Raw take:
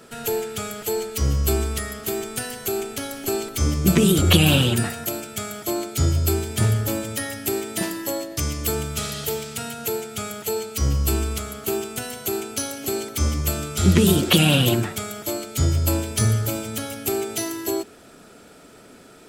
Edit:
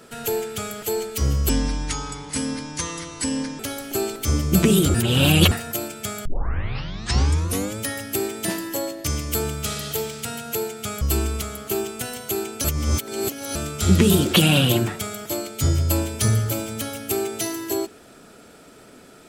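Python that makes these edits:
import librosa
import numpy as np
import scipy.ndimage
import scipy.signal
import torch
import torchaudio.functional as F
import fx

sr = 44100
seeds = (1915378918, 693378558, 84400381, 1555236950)

y = fx.edit(x, sr, fx.speed_span(start_s=1.49, length_s=1.43, speed=0.68),
    fx.reverse_span(start_s=4.27, length_s=0.57),
    fx.tape_start(start_s=5.58, length_s=1.53),
    fx.cut(start_s=10.34, length_s=0.64),
    fx.reverse_span(start_s=12.61, length_s=0.91), tone=tone)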